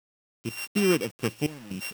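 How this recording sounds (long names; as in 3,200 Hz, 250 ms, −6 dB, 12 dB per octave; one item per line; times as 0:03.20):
a buzz of ramps at a fixed pitch in blocks of 16 samples
sample-and-hold tremolo 4.1 Hz, depth 90%
a quantiser's noise floor 8 bits, dither none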